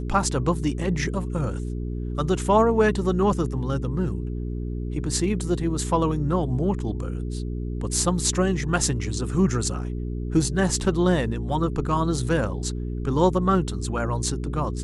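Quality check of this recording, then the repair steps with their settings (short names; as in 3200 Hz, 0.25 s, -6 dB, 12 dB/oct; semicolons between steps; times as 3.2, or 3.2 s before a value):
hum 60 Hz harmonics 7 -29 dBFS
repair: de-hum 60 Hz, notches 7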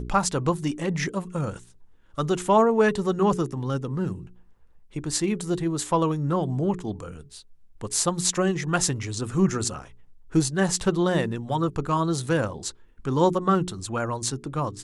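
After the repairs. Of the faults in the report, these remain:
none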